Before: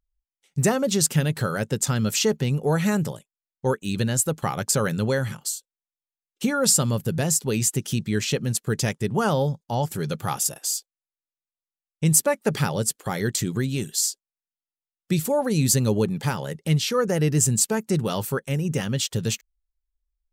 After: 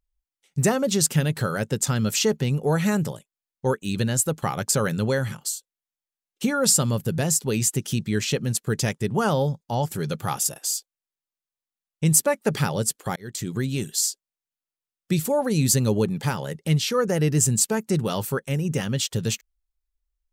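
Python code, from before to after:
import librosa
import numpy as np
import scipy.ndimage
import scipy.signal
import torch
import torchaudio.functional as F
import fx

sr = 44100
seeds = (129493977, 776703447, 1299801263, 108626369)

y = fx.edit(x, sr, fx.fade_in_span(start_s=13.16, length_s=0.66, curve='qsin'), tone=tone)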